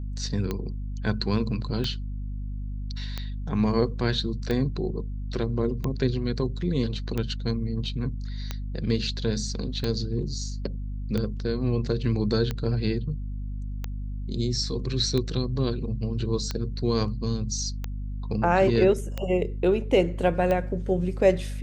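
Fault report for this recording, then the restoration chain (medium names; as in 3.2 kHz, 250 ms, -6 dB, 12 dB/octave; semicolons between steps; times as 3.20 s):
hum 50 Hz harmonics 5 -32 dBFS
tick 45 rpm -15 dBFS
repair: de-click; de-hum 50 Hz, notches 5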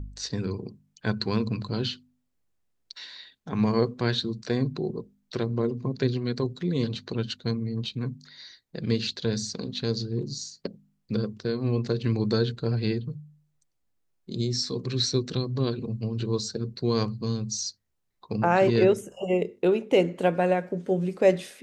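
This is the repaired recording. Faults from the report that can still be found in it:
nothing left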